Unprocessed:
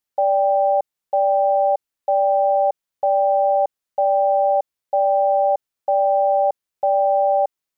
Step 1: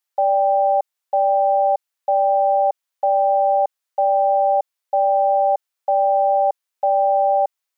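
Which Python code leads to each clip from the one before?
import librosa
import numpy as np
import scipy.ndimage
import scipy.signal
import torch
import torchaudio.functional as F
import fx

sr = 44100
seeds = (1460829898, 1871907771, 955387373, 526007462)

y = scipy.signal.sosfilt(scipy.signal.butter(2, 640.0, 'highpass', fs=sr, output='sos'), x)
y = y * 10.0 ** (3.0 / 20.0)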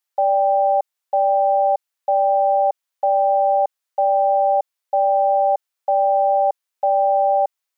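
y = x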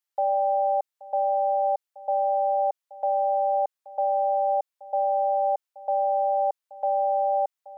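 y = x + 10.0 ** (-19.0 / 20.0) * np.pad(x, (int(827 * sr / 1000.0), 0))[:len(x)]
y = y * 10.0 ** (-6.5 / 20.0)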